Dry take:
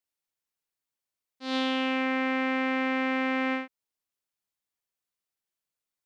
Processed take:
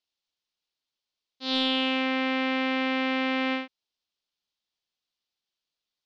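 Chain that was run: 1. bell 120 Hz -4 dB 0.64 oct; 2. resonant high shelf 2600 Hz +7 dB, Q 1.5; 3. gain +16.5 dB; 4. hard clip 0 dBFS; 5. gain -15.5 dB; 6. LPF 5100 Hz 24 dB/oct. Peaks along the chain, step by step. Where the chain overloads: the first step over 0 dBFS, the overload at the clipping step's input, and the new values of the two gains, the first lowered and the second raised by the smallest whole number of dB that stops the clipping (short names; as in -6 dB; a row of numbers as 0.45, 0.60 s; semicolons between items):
-16.0, -12.5, +4.0, 0.0, -15.5, -14.0 dBFS; step 3, 4.0 dB; step 3 +12.5 dB, step 5 -11.5 dB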